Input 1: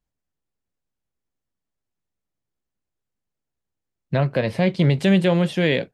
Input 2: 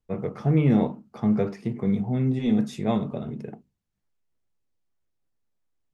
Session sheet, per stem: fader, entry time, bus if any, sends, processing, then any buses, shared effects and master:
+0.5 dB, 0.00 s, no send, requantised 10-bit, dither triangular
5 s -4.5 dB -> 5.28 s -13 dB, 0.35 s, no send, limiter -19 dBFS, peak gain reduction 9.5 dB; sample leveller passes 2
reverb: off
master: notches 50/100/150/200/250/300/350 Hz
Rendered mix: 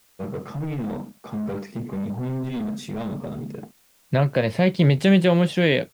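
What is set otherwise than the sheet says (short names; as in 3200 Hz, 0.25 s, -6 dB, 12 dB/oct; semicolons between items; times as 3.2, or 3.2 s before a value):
stem 2: entry 0.35 s -> 0.10 s; master: missing notches 50/100/150/200/250/300/350 Hz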